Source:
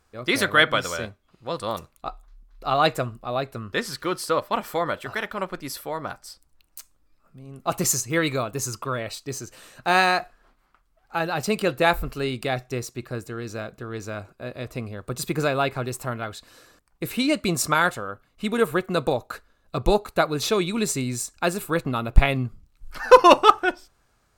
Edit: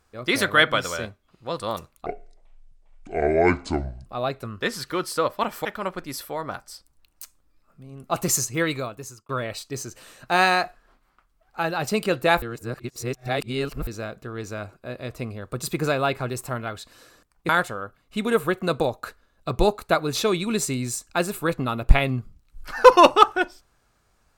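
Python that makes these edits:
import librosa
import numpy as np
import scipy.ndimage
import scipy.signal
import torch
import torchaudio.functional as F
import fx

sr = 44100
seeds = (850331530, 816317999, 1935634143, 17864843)

y = fx.edit(x, sr, fx.speed_span(start_s=2.06, length_s=1.12, speed=0.56),
    fx.cut(start_s=4.77, length_s=0.44),
    fx.fade_out_span(start_s=8.1, length_s=0.75),
    fx.reverse_span(start_s=11.98, length_s=1.45),
    fx.cut(start_s=17.05, length_s=0.71), tone=tone)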